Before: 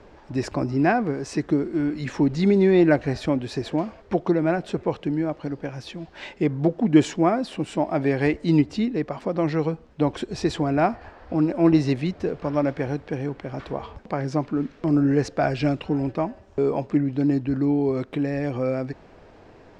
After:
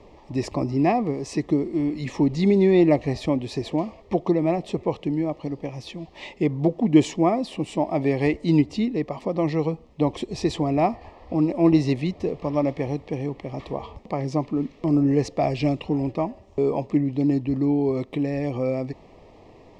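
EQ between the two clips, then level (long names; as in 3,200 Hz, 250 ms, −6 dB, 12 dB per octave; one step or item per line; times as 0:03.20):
Butterworth band-reject 1,500 Hz, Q 2.3
0.0 dB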